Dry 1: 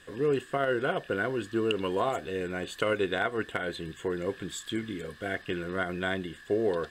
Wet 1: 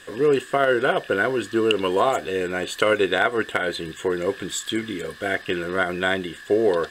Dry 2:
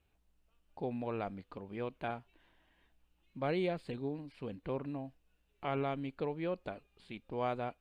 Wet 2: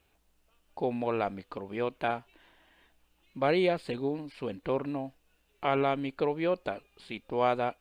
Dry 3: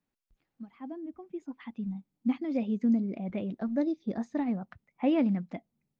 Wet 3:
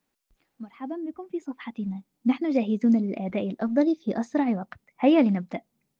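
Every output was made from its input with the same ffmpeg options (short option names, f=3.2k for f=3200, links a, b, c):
-af "bass=f=250:g=-7,treble=f=4k:g=2,volume=9dB"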